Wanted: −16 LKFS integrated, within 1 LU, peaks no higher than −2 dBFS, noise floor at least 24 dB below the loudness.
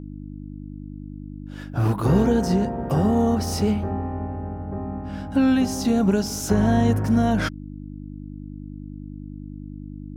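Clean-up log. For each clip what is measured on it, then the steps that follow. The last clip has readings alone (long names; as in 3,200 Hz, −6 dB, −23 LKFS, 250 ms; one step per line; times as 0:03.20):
mains hum 50 Hz; hum harmonics up to 300 Hz; level of the hum −33 dBFS; integrated loudness −22.0 LKFS; sample peak −6.0 dBFS; target loudness −16.0 LKFS
→ hum removal 50 Hz, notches 6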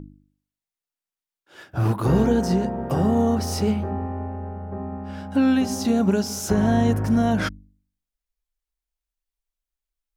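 mains hum none found; integrated loudness −22.5 LKFS; sample peak −7.0 dBFS; target loudness −16.0 LKFS
→ level +6.5 dB
brickwall limiter −2 dBFS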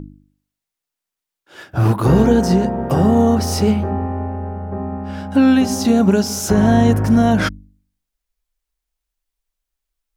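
integrated loudness −16.0 LKFS; sample peak −2.0 dBFS; background noise floor −84 dBFS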